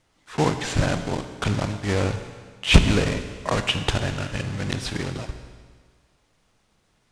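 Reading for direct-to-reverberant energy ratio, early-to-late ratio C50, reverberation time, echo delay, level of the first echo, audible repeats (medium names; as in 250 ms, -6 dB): 8.0 dB, 9.0 dB, 1.6 s, no echo, no echo, no echo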